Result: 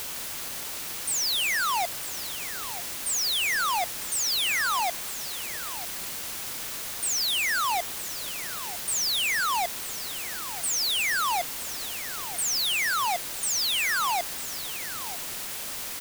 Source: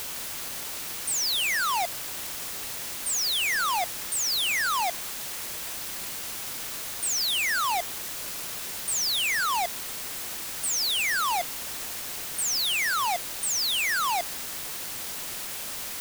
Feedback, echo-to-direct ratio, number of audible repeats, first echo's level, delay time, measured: no regular repeats, -14.5 dB, 1, -14.5 dB, 951 ms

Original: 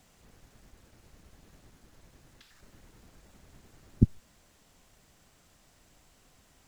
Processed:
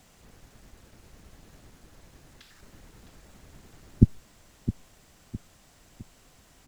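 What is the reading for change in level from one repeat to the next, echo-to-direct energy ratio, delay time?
-8.0 dB, -11.5 dB, 660 ms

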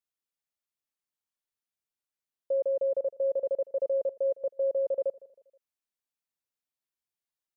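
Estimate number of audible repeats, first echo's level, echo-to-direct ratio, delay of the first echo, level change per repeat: 2, -20.0 dB, -19.0 dB, 159 ms, -7.5 dB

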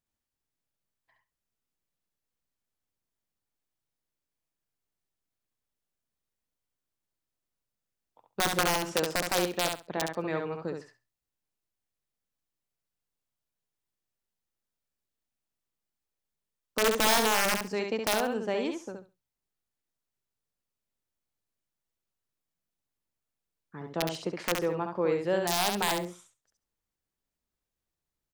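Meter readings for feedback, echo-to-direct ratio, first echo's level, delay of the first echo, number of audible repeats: 17%, -5.0 dB, -5.0 dB, 68 ms, 2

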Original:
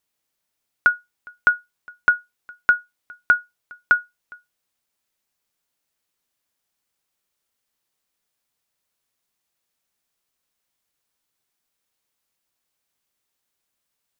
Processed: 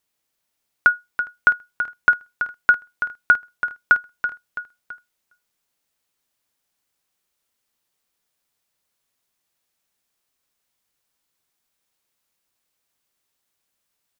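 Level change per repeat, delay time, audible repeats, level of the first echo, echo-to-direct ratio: -6.5 dB, 331 ms, 3, -9.5 dB, -8.5 dB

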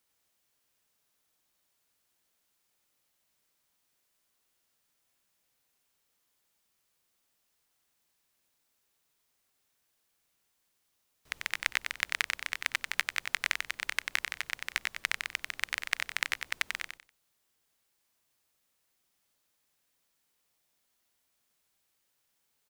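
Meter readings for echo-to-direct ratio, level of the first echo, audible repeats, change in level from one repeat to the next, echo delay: -4.5 dB, -5.0 dB, 3, -12.5 dB, 93 ms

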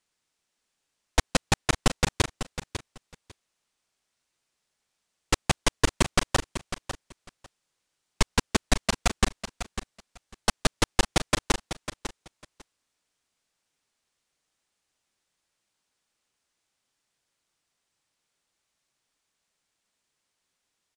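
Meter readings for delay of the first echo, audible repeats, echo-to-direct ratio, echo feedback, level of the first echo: 549 ms, 2, -11.0 dB, 16%, -11.0 dB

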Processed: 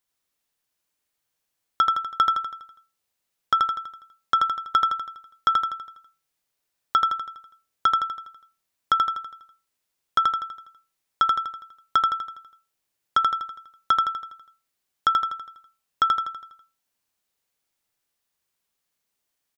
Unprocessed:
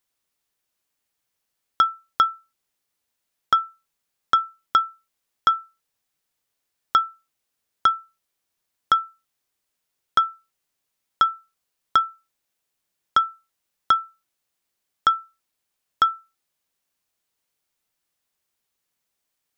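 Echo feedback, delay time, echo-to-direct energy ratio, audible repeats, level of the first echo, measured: 50%, 82 ms, -2.5 dB, 6, -3.5 dB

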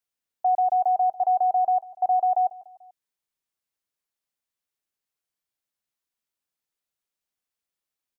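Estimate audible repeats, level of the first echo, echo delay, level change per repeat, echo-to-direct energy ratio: 3, -18.5 dB, 146 ms, -5.5 dB, -17.0 dB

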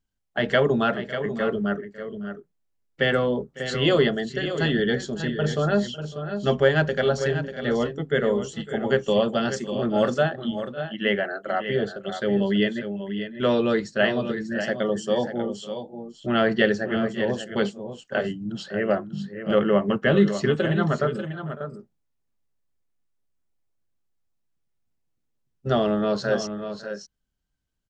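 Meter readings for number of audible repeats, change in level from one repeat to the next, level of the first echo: 2, no regular repeats, -19.0 dB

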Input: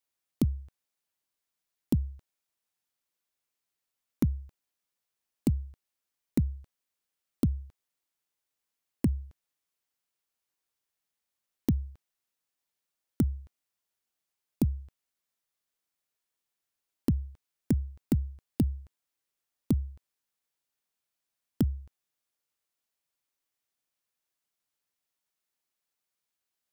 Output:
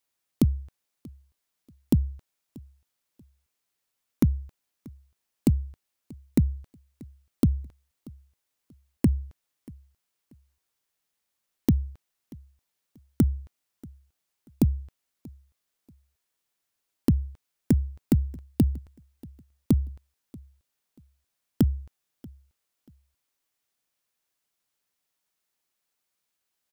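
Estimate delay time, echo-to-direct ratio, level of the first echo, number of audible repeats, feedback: 635 ms, -23.0 dB, -23.5 dB, 2, 27%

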